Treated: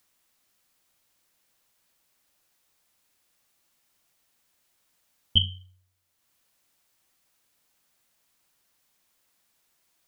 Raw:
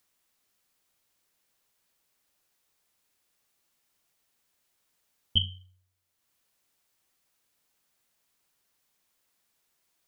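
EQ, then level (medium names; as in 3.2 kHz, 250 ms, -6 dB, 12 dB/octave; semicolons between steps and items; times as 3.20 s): band-stop 420 Hz, Q 12; +4.0 dB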